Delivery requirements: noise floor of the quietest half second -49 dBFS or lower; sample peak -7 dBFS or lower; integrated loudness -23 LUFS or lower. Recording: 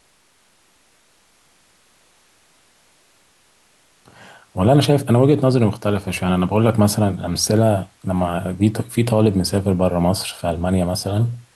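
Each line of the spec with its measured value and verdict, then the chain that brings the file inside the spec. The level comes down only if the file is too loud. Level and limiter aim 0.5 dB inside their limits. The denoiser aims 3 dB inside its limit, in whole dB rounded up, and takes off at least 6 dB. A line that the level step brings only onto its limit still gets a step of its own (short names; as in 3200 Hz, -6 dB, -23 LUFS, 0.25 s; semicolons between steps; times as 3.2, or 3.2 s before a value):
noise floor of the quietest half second -58 dBFS: OK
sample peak -4.5 dBFS: fail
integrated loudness -18.5 LUFS: fail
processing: gain -5 dB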